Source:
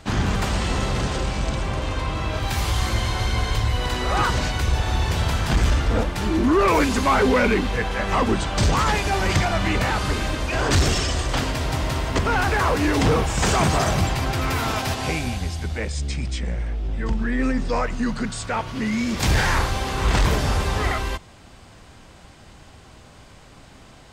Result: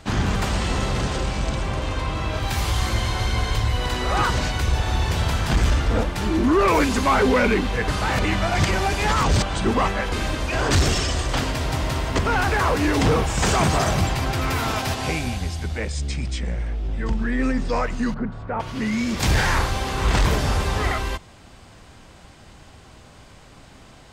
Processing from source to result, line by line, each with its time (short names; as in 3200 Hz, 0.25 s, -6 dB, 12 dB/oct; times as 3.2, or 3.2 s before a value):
7.88–10.12 reverse
18.14–18.6 LPF 1100 Hz